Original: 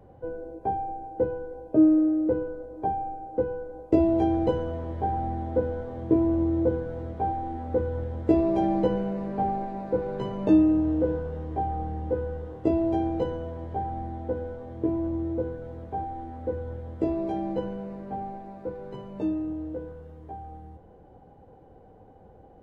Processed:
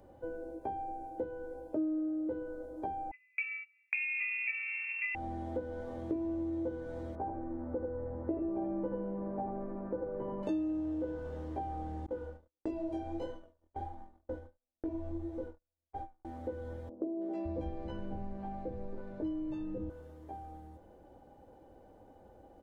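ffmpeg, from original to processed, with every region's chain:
-filter_complex "[0:a]asettb=1/sr,asplit=3[s0][s1][s2];[s0]atrim=end=3.114[s3];[s1]atrim=start=3.11:end=5.15,asetpts=PTS-STARTPTS,afade=t=in:d=0.004:c=qsin,afade=t=out:st=2.036:d=0.004:c=qsin,highpass=45,agate=range=0.0447:threshold=0.0178:ratio=16:release=100:detection=peak,lowpass=f=2400:t=q:w=0.5098,lowpass=f=2400:t=q:w=0.6013,lowpass=f=2400:t=q:w=0.9,lowpass=f=2400:t=q:w=2.563,afreqshift=-2800[s4];[s2]atrim=start=5.146[s5];[s3][s4]acrossfade=d=0.004:c1=hsin:c2=qsin[s6];[s6][s5]acrossfade=d=0.004:c1=qsin:c2=hsin,asettb=1/sr,asplit=3[s7][s8][s9];[s7]atrim=end=7.154[s10];[s8]atrim=start=7.15:end=10.43,asetpts=PTS-STARTPTS,afade=t=in:d=0.004:c=qsin,afade=t=out:st=3.276:d=0.004:c=qsin,lowpass=f=1500:w=0.5412,lowpass=f=1500:w=1.3066,aecho=1:1:81:0.668,atrim=end_sample=144648[s11];[s9]atrim=start=10.426[s12];[s10][s11]acrossfade=d=0.004:c1=hsin:c2=qsin[s13];[s13][s12]acrossfade=d=0.004:c1=qsin:c2=hsin,asettb=1/sr,asplit=3[s14][s15][s16];[s14]atrim=end=12.064[s17];[s15]atrim=start=12.06:end=16.25,asetpts=PTS-STARTPTS,afade=t=in:d=0.004:c=qsin,afade=t=out:st=4.186:d=0.004:c=qsin,agate=range=0.00316:threshold=0.0251:ratio=16:release=100:detection=peak,asubboost=boost=9:cutoff=52,flanger=delay=19:depth=6.7:speed=1.5[s18];[s16]atrim=start=16.246[s19];[s17][s18]acrossfade=d=0.004:c1=hsin:c2=qsin[s20];[s20][s19]acrossfade=d=0.004:c1=qsin:c2=hsin,asettb=1/sr,asplit=3[s21][s22][s23];[s21]atrim=end=16.894[s24];[s22]atrim=start=16.89:end=19.9,asetpts=PTS-STARTPTS,afade=t=in:d=0.004:c=qsin,afade=t=out:st=3.006:d=0.004:c=qsin,aemphasis=mode=reproduction:type=bsi,acrossover=split=230|730[s25][s26][s27];[s27]adelay=320[s28];[s25]adelay=560[s29];[s29][s26][s28]amix=inputs=3:normalize=0,atrim=end_sample=132741[s30];[s23]atrim=start=19.896[s31];[s24][s30]acrossfade=d=0.004:c1=hsin:c2=qsin[s32];[s32][s31]acrossfade=d=0.004:c1=qsin:c2=hsin,bass=f=250:g=-4,treble=f=4000:g=9,aecho=1:1:3.4:0.41,acompressor=threshold=0.0251:ratio=3,volume=0.631"

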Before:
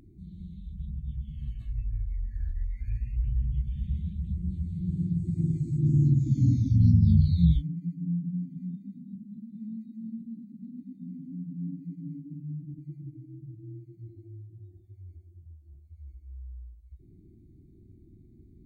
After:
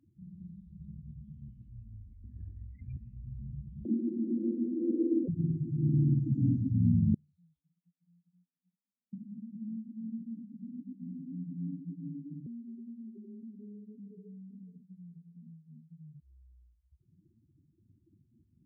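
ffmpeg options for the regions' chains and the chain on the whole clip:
-filter_complex "[0:a]asettb=1/sr,asplit=3[s0][s1][s2];[s0]atrim=end=2.244[s3];[s1]atrim=start=2.24:end=2.97,asetpts=PTS-STARTPTS,afade=t=in:d=0.004:c=qsin,afade=t=out:st=0.726:d=0.004:c=qsin,acontrast=66,aeval=exprs='val(0)*sin(2*PI*22*n/s)':c=same[s4];[s2]atrim=start=2.966[s5];[s3][s4]acrossfade=d=0.004:c1=hsin:c2=qsin[s6];[s6][s5]acrossfade=d=0.004:c1=qsin:c2=hsin,asettb=1/sr,asplit=3[s7][s8][s9];[s7]atrim=end=3.854[s10];[s8]atrim=start=3.85:end=5.28,asetpts=PTS-STARTPTS,afade=t=in:d=0.004:c=qsin,afade=t=out:st=1.426:d=0.004:c=qsin,acompressor=mode=upward:threshold=0.0316:ratio=2.5:attack=3.2:release=140:knee=2.83:detection=peak,afreqshift=160[s11];[s9]atrim=start=5.276[s12];[s10][s11]acrossfade=d=0.004:c1=hsin:c2=qsin[s13];[s13][s12]acrossfade=d=0.004:c1=qsin:c2=hsin,asettb=1/sr,asplit=3[s14][s15][s16];[s14]atrim=end=7.144[s17];[s15]atrim=start=7.14:end=9.13,asetpts=PTS-STARTPTS,afade=t=in:d=0.004:c=qsin,afade=t=out:st=1.986:d=0.004:c=qsin,bandpass=f=1100:t=q:w=4.6,acompressor=threshold=0.00158:ratio=4:attack=3.2:release=140:knee=1:detection=peak[s18];[s16]atrim=start=9.126[s19];[s17][s18]acrossfade=d=0.004:c1=hsin:c2=qsin[s20];[s20][s19]acrossfade=d=0.004:c1=qsin:c2=hsin,asettb=1/sr,asplit=3[s21][s22][s23];[s21]atrim=end=12.464[s24];[s22]atrim=start=12.46:end=16.2,asetpts=PTS-STARTPTS,afade=t=in:d=0.004:c=qsin,afade=t=out:st=3.736:d=0.004:c=qsin,equalizer=f=150:w=3.8:g=15,acompressor=threshold=0.00708:ratio=6:attack=3.2:release=140:knee=1:detection=peak,afreqshift=84[s25];[s23]atrim=start=16.196[s26];[s24][s25]acrossfade=d=0.004:c1=hsin:c2=qsin[s27];[s27][s26]acrossfade=d=0.004:c1=qsin:c2=hsin,afftdn=nr=31:nf=-41,highpass=170"

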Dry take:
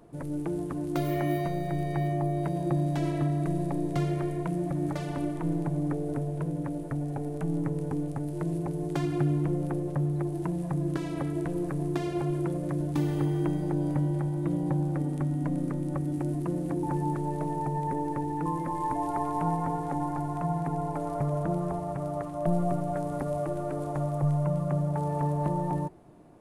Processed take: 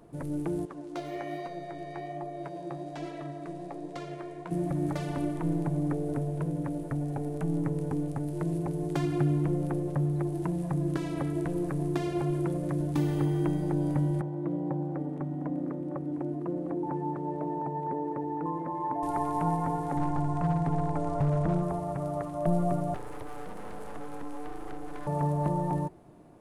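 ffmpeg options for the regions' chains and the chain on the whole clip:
-filter_complex "[0:a]asettb=1/sr,asplit=3[s0][s1][s2];[s0]atrim=end=0.654[s3];[s1]atrim=start=0.65:end=4.51,asetpts=PTS-STARTPTS,afade=t=in:d=0.004:c=qsin,afade=t=out:st=3.856:d=0.004:c=qsin,flanger=delay=3.5:depth=9.9:regen=50:speed=1.2:shape=triangular,adynamicsmooth=sensitivity=3:basefreq=3400,bass=f=250:g=-15,treble=f=4000:g=11[s4];[s2]atrim=start=4.506[s5];[s3][s4]acrossfade=d=0.004:c1=hsin:c2=qsin[s6];[s6][s5]acrossfade=d=0.004:c1=qsin:c2=hsin,asettb=1/sr,asplit=3[s7][s8][s9];[s7]atrim=end=14.214[s10];[s8]atrim=start=14.21:end=19.03,asetpts=PTS-STARTPTS,afade=t=in:d=0.004:c=qsin,afade=t=out:st=4.816:d=0.004:c=qsin,bandpass=f=510:t=q:w=0.59,aecho=1:1:706:0.211,atrim=end_sample=212562[s11];[s9]atrim=start=19.026[s12];[s10][s11]acrossfade=d=0.004:c1=hsin:c2=qsin[s13];[s13][s12]acrossfade=d=0.004:c1=qsin:c2=hsin,asettb=1/sr,asplit=3[s14][s15][s16];[s14]atrim=end=19.974[s17];[s15]atrim=start=19.97:end=21.63,asetpts=PTS-STARTPTS,afade=t=in:d=0.004:c=qsin,afade=t=out:st=1.656:d=0.004:c=qsin,lowpass=f=8900:w=0.5412,lowpass=f=8900:w=1.3066,lowshelf=f=100:g=11.5,asoftclip=type=hard:threshold=0.0891[s18];[s16]atrim=start=21.626[s19];[s17][s18]acrossfade=d=0.004:c1=hsin:c2=qsin[s20];[s20][s19]acrossfade=d=0.004:c1=qsin:c2=hsin,asettb=1/sr,asplit=3[s21][s22][s23];[s21]atrim=end=22.944[s24];[s22]atrim=start=22.94:end=25.07,asetpts=PTS-STARTPTS,afade=t=in:d=0.004:c=qsin,afade=t=out:st=2.126:d=0.004:c=qsin,lowshelf=f=100:t=q:w=1.5:g=-6,acrossover=split=280|1100[s25][s26][s27];[s25]acompressor=threshold=0.0126:ratio=4[s28];[s26]acompressor=threshold=0.00708:ratio=4[s29];[s27]acompressor=threshold=0.00282:ratio=4[s30];[s28][s29][s30]amix=inputs=3:normalize=0,aeval=exprs='abs(val(0))':c=same[s31];[s23]atrim=start=25.066[s32];[s24][s31]acrossfade=d=0.004:c1=hsin:c2=qsin[s33];[s33][s32]acrossfade=d=0.004:c1=qsin:c2=hsin"

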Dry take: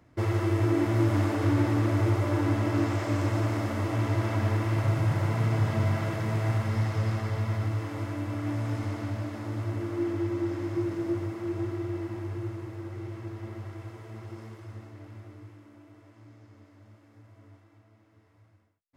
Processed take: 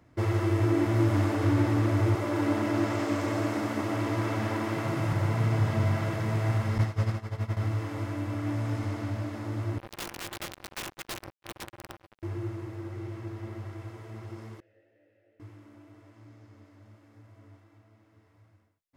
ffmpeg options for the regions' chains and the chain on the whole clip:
-filter_complex "[0:a]asettb=1/sr,asplit=3[s0][s1][s2];[s0]atrim=end=2.154[s3];[s1]atrim=start=2.15:end=5.13,asetpts=PTS-STARTPTS,afade=t=in:d=0.004:c=qsin,afade=t=out:st=2.976:d=0.004:c=qsin,highpass=f=130:w=0.5412,highpass=f=130:w=1.3066,aecho=1:1:207:0.531,atrim=end_sample=131418[s4];[s2]atrim=start=5.126[s5];[s3][s4]acrossfade=d=0.004:c1=hsin:c2=qsin[s6];[s6][s5]acrossfade=d=0.004:c1=qsin:c2=hsin,asettb=1/sr,asplit=3[s7][s8][s9];[s7]atrim=end=6.784[s10];[s8]atrim=start=6.78:end=7.57,asetpts=PTS-STARTPTS,afade=t=in:d=0.004:c=qsin,afade=t=out:st=0.786:d=0.004:c=qsin,agate=range=0.0224:threshold=0.0891:ratio=3:release=100:detection=peak,acontrast=66[s11];[s9]atrim=start=7.566[s12];[s10][s11]acrossfade=d=0.004:c1=hsin:c2=qsin[s13];[s13][s12]acrossfade=d=0.004:c1=qsin:c2=hsin,asettb=1/sr,asplit=3[s14][s15][s16];[s14]atrim=end=9.784[s17];[s15]atrim=start=9.78:end=12.23,asetpts=PTS-STARTPTS,afade=t=in:d=0.004:c=qsin,afade=t=out:st=2.446:d=0.004:c=qsin,equalizer=f=6800:t=o:w=0.32:g=-12,acrusher=bits=3:mix=0:aa=0.5,aeval=exprs='(mod(25.1*val(0)+1,2)-1)/25.1':c=same[s18];[s16]atrim=start=12.226[s19];[s17][s18]acrossfade=d=0.004:c1=hsin:c2=qsin[s20];[s20][s19]acrossfade=d=0.004:c1=qsin:c2=hsin,asettb=1/sr,asplit=3[s21][s22][s23];[s21]atrim=end=14.604[s24];[s22]atrim=start=14.6:end=15.4,asetpts=PTS-STARTPTS,afade=t=in:d=0.004:c=qsin,afade=t=out:st=0.796:d=0.004:c=qsin,flanger=delay=17:depth=3.6:speed=2.4,asplit=3[s25][s26][s27];[s25]bandpass=f=530:t=q:w=8,volume=1[s28];[s26]bandpass=f=1840:t=q:w=8,volume=0.501[s29];[s27]bandpass=f=2480:t=q:w=8,volume=0.355[s30];[s28][s29][s30]amix=inputs=3:normalize=0[s31];[s23]atrim=start=15.396[s32];[s24][s31]acrossfade=d=0.004:c1=hsin:c2=qsin[s33];[s33][s32]acrossfade=d=0.004:c1=qsin:c2=hsin"

